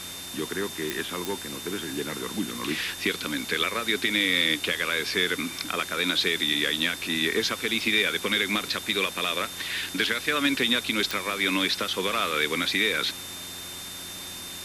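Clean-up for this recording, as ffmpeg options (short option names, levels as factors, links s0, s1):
-af "adeclick=t=4,bandreject=f=90.1:t=h:w=4,bandreject=f=180.2:t=h:w=4,bandreject=f=270.3:t=h:w=4,bandreject=f=360.4:t=h:w=4,bandreject=f=3600:w=30,afwtdn=0.013"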